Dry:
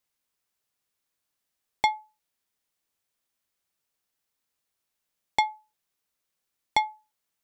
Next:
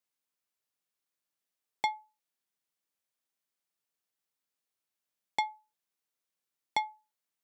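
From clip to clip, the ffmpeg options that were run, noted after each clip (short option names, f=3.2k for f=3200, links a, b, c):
-af "highpass=130,volume=-7dB"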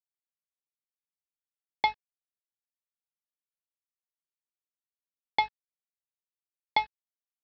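-af "aeval=exprs='val(0)+0.00126*(sin(2*PI*50*n/s)+sin(2*PI*2*50*n/s)/2+sin(2*PI*3*50*n/s)/3+sin(2*PI*4*50*n/s)/4+sin(2*PI*5*50*n/s)/5)':c=same,aresample=11025,aeval=exprs='sgn(val(0))*max(abs(val(0))-0.00891,0)':c=same,aresample=44100,volume=6dB"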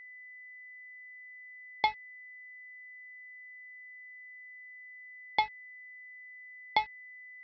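-af "aeval=exprs='val(0)+0.00562*sin(2*PI*2000*n/s)':c=same,volume=-2dB"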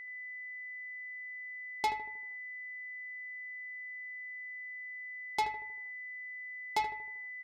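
-filter_complex "[0:a]asoftclip=type=tanh:threshold=-29dB,asplit=2[a][b];[b]adelay=78,lowpass=f=1.4k:p=1,volume=-7.5dB,asplit=2[c][d];[d]adelay=78,lowpass=f=1.4k:p=1,volume=0.52,asplit=2[e][f];[f]adelay=78,lowpass=f=1.4k:p=1,volume=0.52,asplit=2[g][h];[h]adelay=78,lowpass=f=1.4k:p=1,volume=0.52,asplit=2[i][j];[j]adelay=78,lowpass=f=1.4k:p=1,volume=0.52,asplit=2[k][l];[l]adelay=78,lowpass=f=1.4k:p=1,volume=0.52[m];[c][e][g][i][k][m]amix=inputs=6:normalize=0[n];[a][n]amix=inputs=2:normalize=0,volume=4dB"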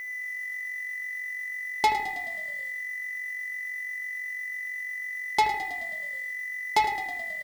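-filter_complex "[0:a]asplit=8[a][b][c][d][e][f][g][h];[b]adelay=107,afreqshift=-46,volume=-12dB[i];[c]adelay=214,afreqshift=-92,volume=-16.2dB[j];[d]adelay=321,afreqshift=-138,volume=-20.3dB[k];[e]adelay=428,afreqshift=-184,volume=-24.5dB[l];[f]adelay=535,afreqshift=-230,volume=-28.6dB[m];[g]adelay=642,afreqshift=-276,volume=-32.8dB[n];[h]adelay=749,afreqshift=-322,volume=-36.9dB[o];[a][i][j][k][l][m][n][o]amix=inputs=8:normalize=0,acrusher=bits=9:mix=0:aa=0.000001,volume=9dB"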